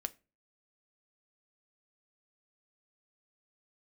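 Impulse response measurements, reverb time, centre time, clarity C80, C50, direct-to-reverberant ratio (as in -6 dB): 0.30 s, 2 ms, 28.5 dB, 22.5 dB, 10.0 dB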